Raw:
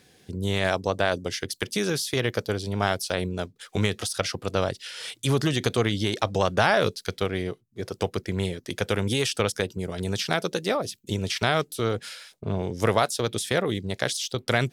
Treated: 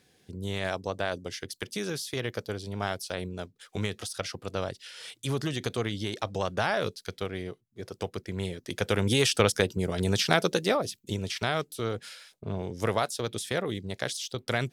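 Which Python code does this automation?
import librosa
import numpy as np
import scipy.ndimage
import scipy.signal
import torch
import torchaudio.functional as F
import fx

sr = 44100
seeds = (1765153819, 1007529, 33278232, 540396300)

y = fx.gain(x, sr, db=fx.line((8.26, -7.0), (9.28, 2.0), (10.47, 2.0), (11.33, -5.5)))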